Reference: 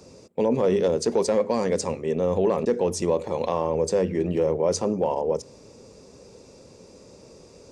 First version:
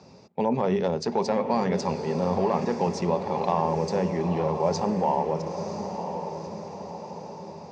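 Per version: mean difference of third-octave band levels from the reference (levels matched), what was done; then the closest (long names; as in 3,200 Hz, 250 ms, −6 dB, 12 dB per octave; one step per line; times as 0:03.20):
6.0 dB: loudspeaker in its box 100–5,100 Hz, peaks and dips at 170 Hz +4 dB, 310 Hz −8 dB, 490 Hz −8 dB, 830 Hz +8 dB, 3,200 Hz −4 dB
feedback delay with all-pass diffusion 976 ms, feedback 53%, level −7.5 dB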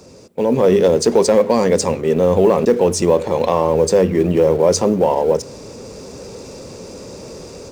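3.0 dB: mu-law and A-law mismatch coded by mu
automatic gain control gain up to 9.5 dB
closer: second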